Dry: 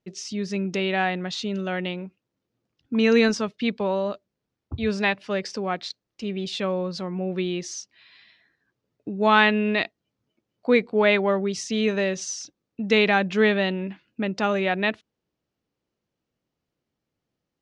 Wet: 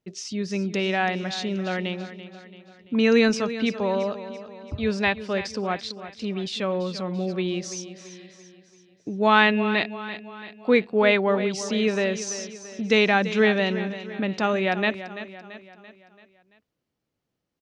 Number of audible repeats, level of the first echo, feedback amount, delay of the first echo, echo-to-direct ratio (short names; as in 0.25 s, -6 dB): 4, -13.0 dB, 50%, 0.337 s, -11.5 dB